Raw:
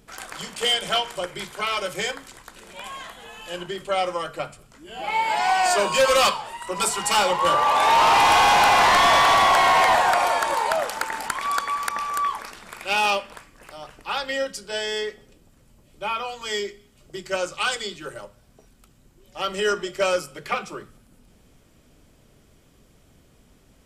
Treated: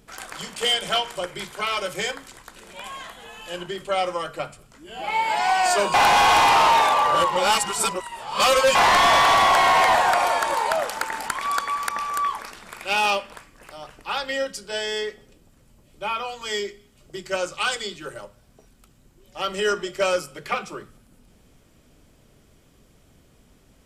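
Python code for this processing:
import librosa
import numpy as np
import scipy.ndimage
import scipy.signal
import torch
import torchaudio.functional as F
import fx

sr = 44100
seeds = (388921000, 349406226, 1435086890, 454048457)

y = fx.edit(x, sr, fx.reverse_span(start_s=5.94, length_s=2.81), tone=tone)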